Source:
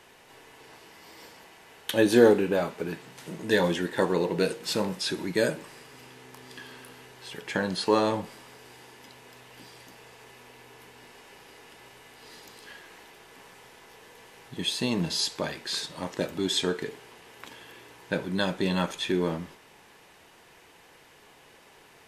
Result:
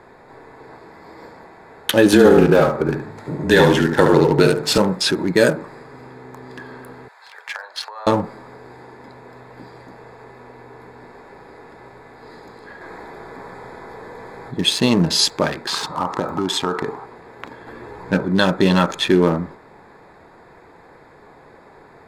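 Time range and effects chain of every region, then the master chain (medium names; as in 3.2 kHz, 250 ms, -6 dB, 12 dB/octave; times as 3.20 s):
2.12–4.78 s: feedback delay 71 ms, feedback 32%, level -6 dB + frequency shift -26 Hz
7.08–8.07 s: dynamic bell 8.3 kHz, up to -6 dB, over -50 dBFS, Q 0.83 + compression 10:1, threshold -30 dBFS + Bessel high-pass 1.1 kHz, order 6
12.81–14.55 s: band-stop 2.8 kHz, Q 6.8 + level flattener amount 50%
15.67–17.06 s: high-order bell 1 kHz +10.5 dB 1 oct + compression 4:1, threshold -29 dBFS
17.67–18.20 s: bass shelf 200 Hz +6 dB + upward compressor, threshold -33 dBFS + three-phase chorus
whole clip: local Wiener filter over 15 samples; dynamic bell 1.3 kHz, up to +6 dB, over -51 dBFS, Q 5; loudness maximiser +13 dB; trim -1 dB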